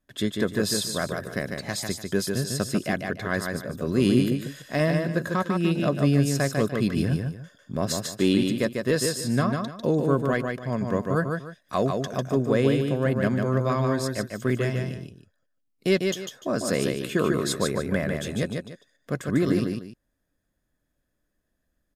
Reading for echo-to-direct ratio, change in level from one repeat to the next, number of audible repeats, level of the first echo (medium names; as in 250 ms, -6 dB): -4.0 dB, -11.0 dB, 2, -4.5 dB